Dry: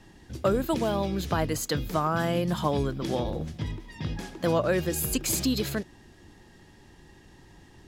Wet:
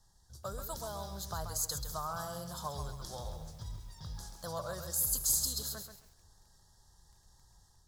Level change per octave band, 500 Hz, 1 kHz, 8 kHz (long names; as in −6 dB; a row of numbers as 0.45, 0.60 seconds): −16.5, −10.5, 0.0 decibels